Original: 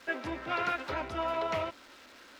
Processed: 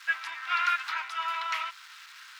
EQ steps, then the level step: inverse Chebyshev high-pass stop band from 570 Hz, stop band 40 dB; +7.0 dB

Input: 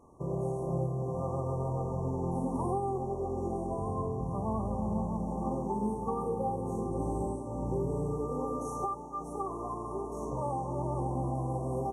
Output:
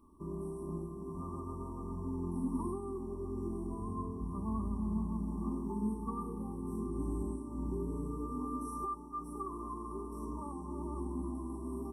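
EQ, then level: static phaser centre 310 Hz, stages 4; static phaser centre 1.9 kHz, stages 6; +3.5 dB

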